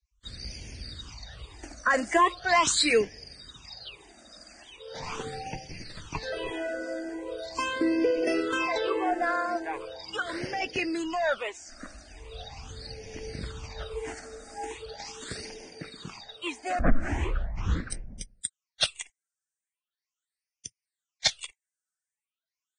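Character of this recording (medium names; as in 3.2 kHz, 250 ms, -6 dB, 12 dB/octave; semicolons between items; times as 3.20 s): phasing stages 8, 0.4 Hz, lowest notch 120–1200 Hz; Vorbis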